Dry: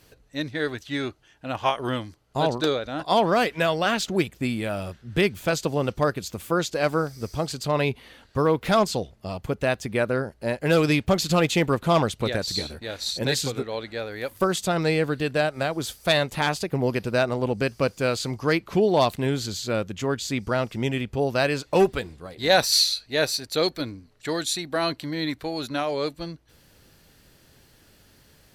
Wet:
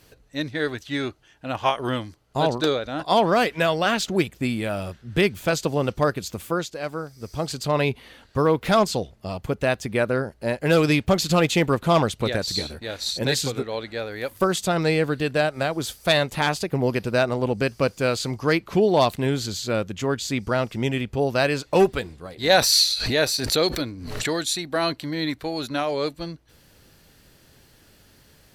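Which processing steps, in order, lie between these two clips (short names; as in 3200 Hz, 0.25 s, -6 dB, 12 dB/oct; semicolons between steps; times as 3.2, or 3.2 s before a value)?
6.39–7.51 dip -8.5 dB, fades 0.35 s; 22.58–24.36 backwards sustainer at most 45 dB/s; gain +1.5 dB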